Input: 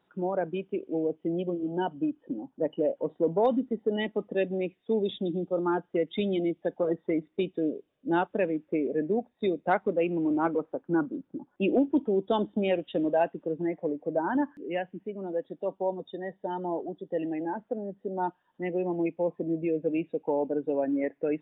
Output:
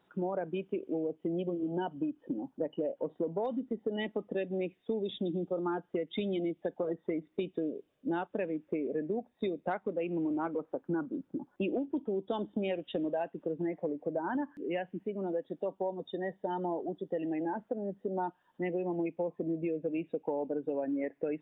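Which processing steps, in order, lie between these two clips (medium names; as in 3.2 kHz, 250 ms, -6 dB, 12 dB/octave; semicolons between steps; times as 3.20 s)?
compression, threshold -32 dBFS, peak gain reduction 13 dB; trim +1.5 dB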